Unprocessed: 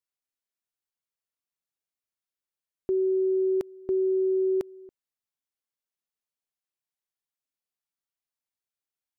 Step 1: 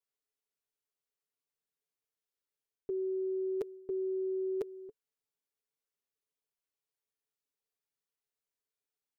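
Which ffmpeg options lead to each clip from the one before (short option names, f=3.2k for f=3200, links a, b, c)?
-af "equalizer=f=440:w=4.5:g=11.5,aecho=1:1:7.1:0.69,areverse,acompressor=threshold=-29dB:ratio=6,areverse,volume=-4.5dB"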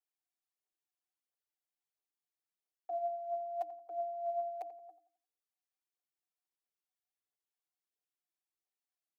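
-filter_complex "[0:a]aphaser=in_gain=1:out_gain=1:delay=3.1:decay=0.58:speed=1.5:type=triangular,afreqshift=310,asplit=2[a][b];[b]adelay=87,lowpass=f=1.2k:p=1,volume=-12dB,asplit=2[c][d];[d]adelay=87,lowpass=f=1.2k:p=1,volume=0.4,asplit=2[e][f];[f]adelay=87,lowpass=f=1.2k:p=1,volume=0.4,asplit=2[g][h];[h]adelay=87,lowpass=f=1.2k:p=1,volume=0.4[i];[a][c][e][g][i]amix=inputs=5:normalize=0,volume=-7.5dB"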